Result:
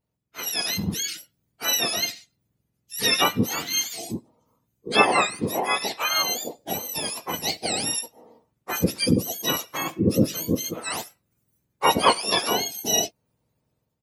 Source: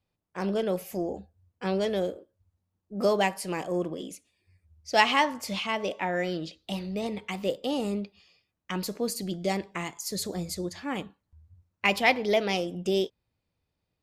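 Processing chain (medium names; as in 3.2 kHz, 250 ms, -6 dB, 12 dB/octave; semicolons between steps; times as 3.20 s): spectrum inverted on a logarithmic axis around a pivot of 1.5 kHz; level rider gain up to 8 dB; harmony voices -12 st -7 dB, -7 st -11 dB; trim -1 dB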